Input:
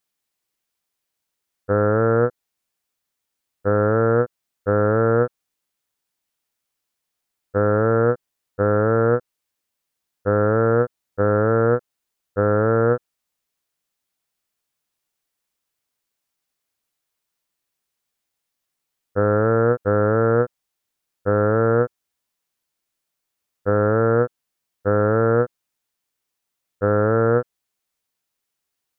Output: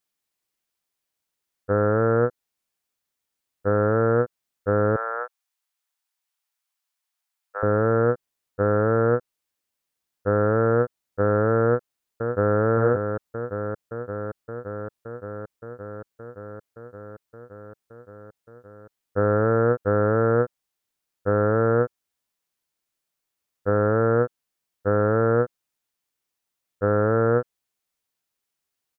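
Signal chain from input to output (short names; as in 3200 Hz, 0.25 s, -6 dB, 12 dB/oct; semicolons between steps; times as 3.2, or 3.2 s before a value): 4.96–7.63 HPF 710 Hz 24 dB/oct; 11.63–12.6 echo throw 0.57 s, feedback 80%, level -6 dB; gain -2.5 dB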